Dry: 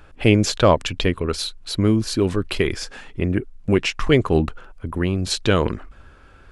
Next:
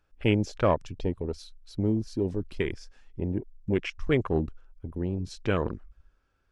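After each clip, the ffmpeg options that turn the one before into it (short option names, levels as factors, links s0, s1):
-af "afwtdn=0.0631,equalizer=f=5600:t=o:w=0.59:g=8,volume=0.376"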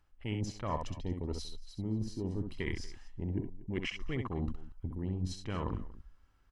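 -af "aecho=1:1:1:0.46,areverse,acompressor=threshold=0.0251:ratio=10,areverse,aecho=1:1:65|69|236:0.473|0.133|0.106"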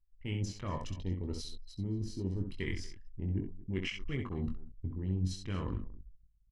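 -filter_complex "[0:a]equalizer=f=780:w=0.95:g=-8.5,asplit=2[s0][s1];[s1]adelay=21,volume=0.501[s2];[s0][s2]amix=inputs=2:normalize=0,anlmdn=0.000398"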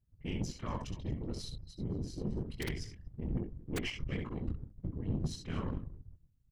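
-af "aeval=exprs='(mod(13.3*val(0)+1,2)-1)/13.3':c=same,afftfilt=real='hypot(re,im)*cos(2*PI*random(0))':imag='hypot(re,im)*sin(2*PI*random(1))':win_size=512:overlap=0.75,aeval=exprs='0.0422*(cos(1*acos(clip(val(0)/0.0422,-1,1)))-cos(1*PI/2))+0.00335*(cos(6*acos(clip(val(0)/0.0422,-1,1)))-cos(6*PI/2))':c=same,volume=1.68"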